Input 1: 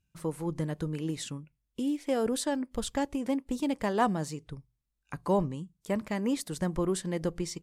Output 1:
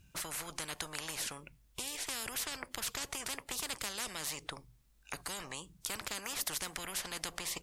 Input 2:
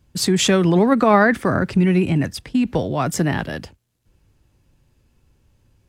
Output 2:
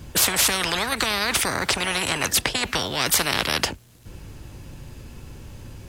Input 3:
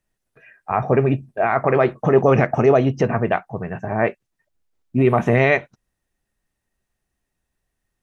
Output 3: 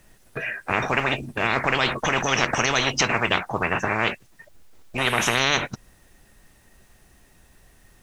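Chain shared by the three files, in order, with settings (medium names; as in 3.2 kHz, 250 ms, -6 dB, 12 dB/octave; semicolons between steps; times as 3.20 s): spectrum-flattening compressor 10:1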